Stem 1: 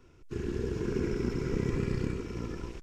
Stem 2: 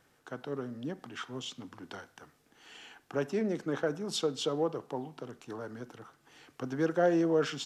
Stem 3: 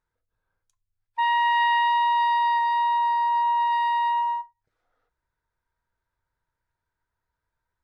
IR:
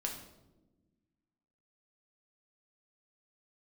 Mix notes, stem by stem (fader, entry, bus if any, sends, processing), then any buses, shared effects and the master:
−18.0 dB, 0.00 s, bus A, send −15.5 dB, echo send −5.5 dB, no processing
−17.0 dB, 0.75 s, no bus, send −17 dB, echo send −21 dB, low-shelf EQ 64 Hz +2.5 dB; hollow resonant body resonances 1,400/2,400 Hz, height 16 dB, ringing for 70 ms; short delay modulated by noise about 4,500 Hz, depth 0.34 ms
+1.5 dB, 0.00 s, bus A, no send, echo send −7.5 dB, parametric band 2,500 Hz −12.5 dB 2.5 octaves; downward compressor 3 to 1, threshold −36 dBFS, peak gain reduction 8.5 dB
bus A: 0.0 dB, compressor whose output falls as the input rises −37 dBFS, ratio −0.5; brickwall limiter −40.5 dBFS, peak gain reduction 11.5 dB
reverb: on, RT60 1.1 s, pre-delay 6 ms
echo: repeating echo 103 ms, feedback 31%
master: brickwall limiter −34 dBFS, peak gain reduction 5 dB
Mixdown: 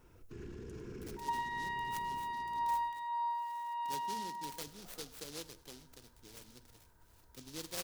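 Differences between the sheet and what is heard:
stem 3 +1.5 dB → +7.5 dB
master: missing brickwall limiter −34 dBFS, peak gain reduction 5 dB

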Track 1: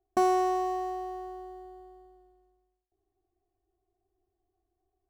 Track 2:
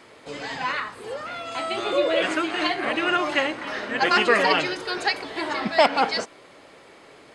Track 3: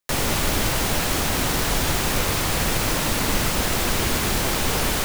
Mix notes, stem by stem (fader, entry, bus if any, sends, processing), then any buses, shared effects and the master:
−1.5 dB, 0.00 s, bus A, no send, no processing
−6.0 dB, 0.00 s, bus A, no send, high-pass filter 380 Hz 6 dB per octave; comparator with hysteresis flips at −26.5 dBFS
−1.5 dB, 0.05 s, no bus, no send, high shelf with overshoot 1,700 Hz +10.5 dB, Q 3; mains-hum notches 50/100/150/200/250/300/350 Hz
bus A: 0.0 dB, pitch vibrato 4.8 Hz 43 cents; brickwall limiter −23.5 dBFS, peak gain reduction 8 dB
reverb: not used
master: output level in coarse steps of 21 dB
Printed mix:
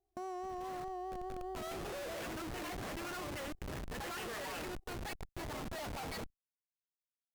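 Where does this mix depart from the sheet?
stem 1 −1.5 dB → +8.0 dB
stem 3: muted

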